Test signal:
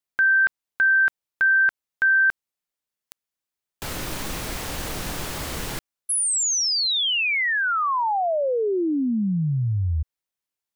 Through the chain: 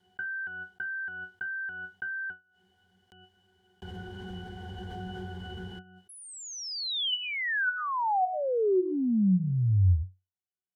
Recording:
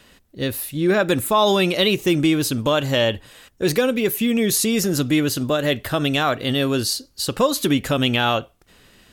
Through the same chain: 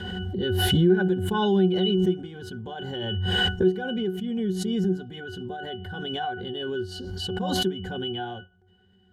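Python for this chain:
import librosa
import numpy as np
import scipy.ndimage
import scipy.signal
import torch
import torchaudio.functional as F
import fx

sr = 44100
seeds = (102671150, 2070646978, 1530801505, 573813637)

y = fx.high_shelf(x, sr, hz=4000.0, db=5.0)
y = fx.octave_resonator(y, sr, note='F#', decay_s=0.23)
y = fx.pre_swell(y, sr, db_per_s=21.0)
y = y * librosa.db_to_amplitude(3.5)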